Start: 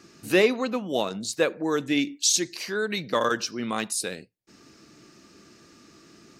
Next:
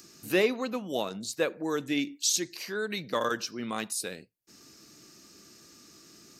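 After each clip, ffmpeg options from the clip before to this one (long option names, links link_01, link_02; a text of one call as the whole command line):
ffmpeg -i in.wav -filter_complex "[0:a]equalizer=frequency=13000:width=4.5:gain=9.5,acrossover=split=4500[link_01][link_02];[link_02]acompressor=mode=upward:threshold=-41dB:ratio=2.5[link_03];[link_01][link_03]amix=inputs=2:normalize=0,volume=-5dB" out.wav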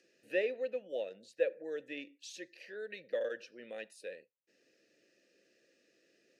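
ffmpeg -i in.wav -filter_complex "[0:a]asplit=3[link_01][link_02][link_03];[link_01]bandpass=frequency=530:width_type=q:width=8,volume=0dB[link_04];[link_02]bandpass=frequency=1840:width_type=q:width=8,volume=-6dB[link_05];[link_03]bandpass=frequency=2480:width_type=q:width=8,volume=-9dB[link_06];[link_04][link_05][link_06]amix=inputs=3:normalize=0,equalizer=frequency=9800:width_type=o:width=0.26:gain=5.5,volume=1dB" out.wav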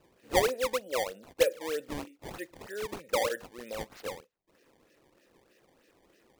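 ffmpeg -i in.wav -af "acrusher=samples=19:mix=1:aa=0.000001:lfo=1:lforange=30.4:lforate=3.2,volume=6.5dB" out.wav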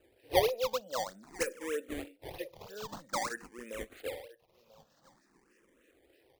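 ffmpeg -i in.wav -filter_complex "[0:a]aecho=1:1:991:0.1,asplit=2[link_01][link_02];[link_02]afreqshift=0.5[link_03];[link_01][link_03]amix=inputs=2:normalize=1" out.wav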